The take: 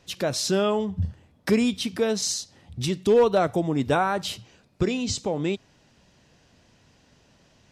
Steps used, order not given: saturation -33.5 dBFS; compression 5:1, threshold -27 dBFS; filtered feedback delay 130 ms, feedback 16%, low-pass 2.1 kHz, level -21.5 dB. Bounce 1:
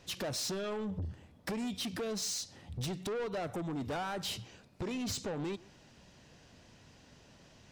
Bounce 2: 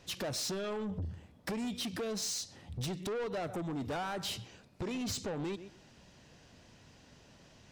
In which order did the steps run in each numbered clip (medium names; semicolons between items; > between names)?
compression > saturation > filtered feedback delay; filtered feedback delay > compression > saturation